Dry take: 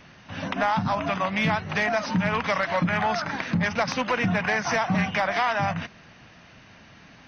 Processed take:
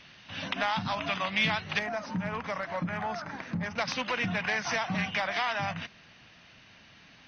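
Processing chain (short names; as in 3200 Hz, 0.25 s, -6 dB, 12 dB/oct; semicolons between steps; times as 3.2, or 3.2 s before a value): bell 3500 Hz +12.5 dB 1.7 oct, from 1.79 s -4.5 dB, from 3.78 s +8.5 dB; gain -8.5 dB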